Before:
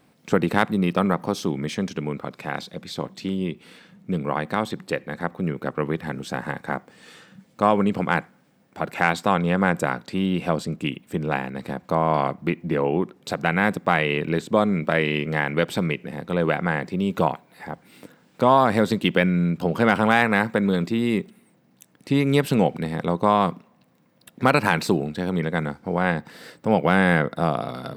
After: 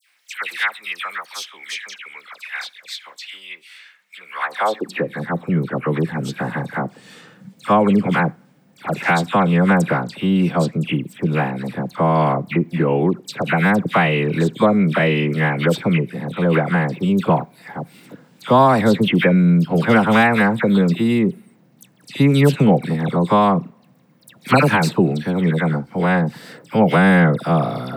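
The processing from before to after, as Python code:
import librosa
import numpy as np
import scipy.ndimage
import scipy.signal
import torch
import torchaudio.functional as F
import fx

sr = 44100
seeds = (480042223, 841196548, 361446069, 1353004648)

y = fx.dispersion(x, sr, late='lows', ms=92.0, hz=1800.0)
y = fx.filter_sweep_highpass(y, sr, from_hz=2000.0, to_hz=130.0, start_s=4.31, end_s=5.12, q=1.8)
y = y * librosa.db_to_amplitude(3.5)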